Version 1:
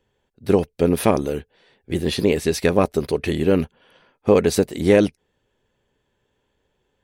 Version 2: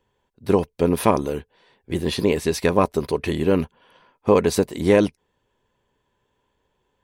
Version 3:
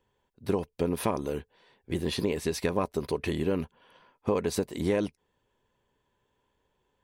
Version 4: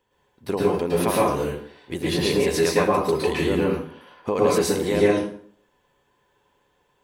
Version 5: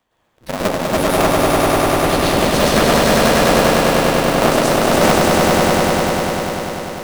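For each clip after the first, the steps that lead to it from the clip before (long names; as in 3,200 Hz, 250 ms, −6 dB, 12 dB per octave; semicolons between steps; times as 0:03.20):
parametric band 1,000 Hz +9 dB 0.3 octaves; level −1.5 dB
downward compressor 2.5 to 1, threshold −22 dBFS, peak gain reduction 8 dB; level −4 dB
low-shelf EQ 230 Hz −9 dB; dense smooth reverb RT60 0.57 s, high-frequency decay 0.7×, pre-delay 100 ms, DRR −6 dB; level +4 dB
sub-harmonics by changed cycles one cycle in 2, inverted; echo that builds up and dies away 99 ms, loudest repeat 5, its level −3.5 dB; level +1.5 dB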